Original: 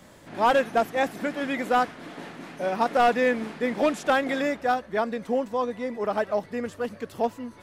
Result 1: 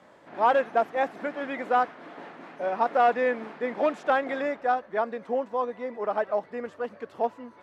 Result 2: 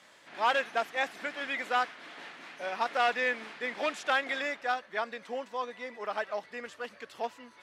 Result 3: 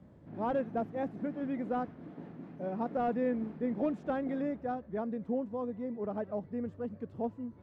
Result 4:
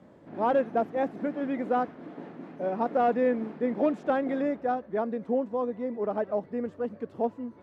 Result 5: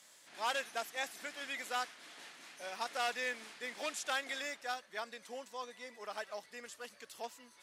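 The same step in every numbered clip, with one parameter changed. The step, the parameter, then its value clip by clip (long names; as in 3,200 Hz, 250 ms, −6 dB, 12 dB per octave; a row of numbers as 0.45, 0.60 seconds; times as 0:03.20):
resonant band-pass, frequency: 850, 2,700, 110, 300, 7,500 Hertz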